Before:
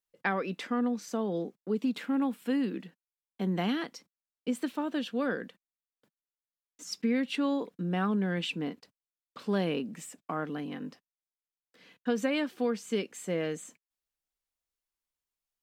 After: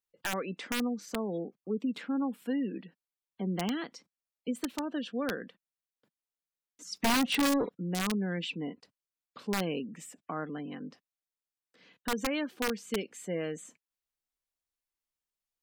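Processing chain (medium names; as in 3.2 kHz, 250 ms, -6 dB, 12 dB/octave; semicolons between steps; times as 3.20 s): 6.96–7.70 s: waveshaping leveller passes 3; spectral gate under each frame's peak -30 dB strong; integer overflow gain 20.5 dB; trim -2.5 dB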